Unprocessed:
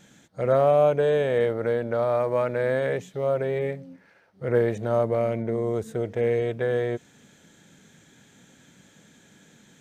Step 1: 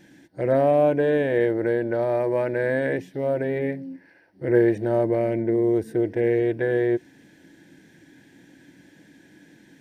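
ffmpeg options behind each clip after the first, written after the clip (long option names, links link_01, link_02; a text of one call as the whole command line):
ffmpeg -i in.wav -af "superequalizer=6b=3.55:10b=0.355:11b=1.58:13b=0.631:15b=0.316" out.wav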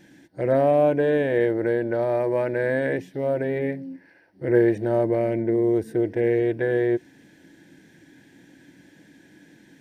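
ffmpeg -i in.wav -af anull out.wav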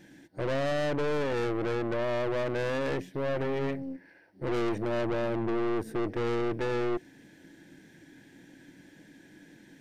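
ffmpeg -i in.wav -af "aeval=exprs='(tanh(28.2*val(0)+0.65)-tanh(0.65))/28.2':channel_layout=same,volume=1.5dB" out.wav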